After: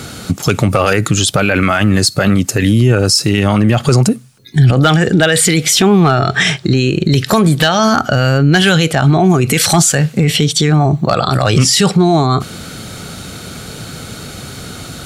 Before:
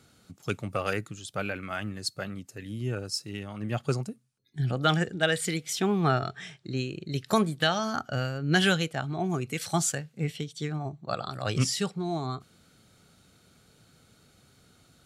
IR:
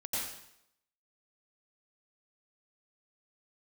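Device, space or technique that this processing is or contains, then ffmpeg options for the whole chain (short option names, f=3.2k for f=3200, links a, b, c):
loud club master: -af "acompressor=threshold=-29dB:ratio=2.5,asoftclip=type=hard:threshold=-21.5dB,alimiter=level_in=33dB:limit=-1dB:release=50:level=0:latency=1,volume=-1.5dB"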